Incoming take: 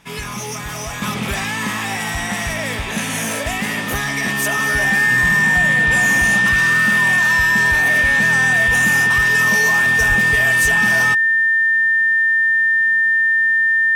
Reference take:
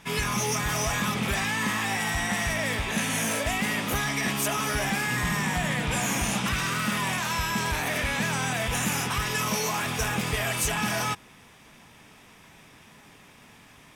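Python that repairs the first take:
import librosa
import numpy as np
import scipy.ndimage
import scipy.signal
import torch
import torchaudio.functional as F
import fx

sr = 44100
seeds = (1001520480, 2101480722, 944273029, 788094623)

y = fx.notch(x, sr, hz=1800.0, q=30.0)
y = fx.highpass(y, sr, hz=140.0, slope=24, at=(10.08, 10.2), fade=0.02)
y = fx.gain(y, sr, db=fx.steps((0.0, 0.0), (1.02, -5.0)))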